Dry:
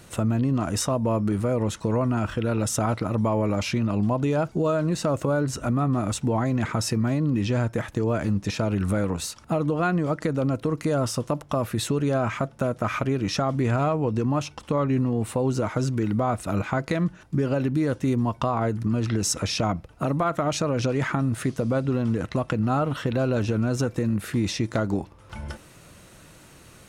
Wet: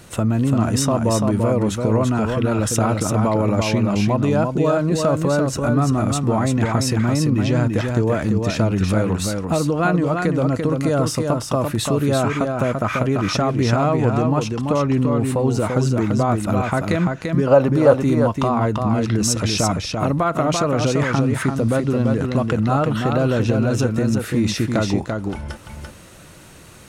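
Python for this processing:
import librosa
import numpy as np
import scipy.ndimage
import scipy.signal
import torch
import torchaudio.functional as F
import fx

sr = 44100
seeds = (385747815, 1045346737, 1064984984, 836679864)

y = fx.band_shelf(x, sr, hz=790.0, db=11.5, octaves=1.7, at=(17.47, 17.94))
y = y + 10.0 ** (-4.5 / 20.0) * np.pad(y, (int(340 * sr / 1000.0), 0))[:len(y)]
y = y * 10.0 ** (4.5 / 20.0)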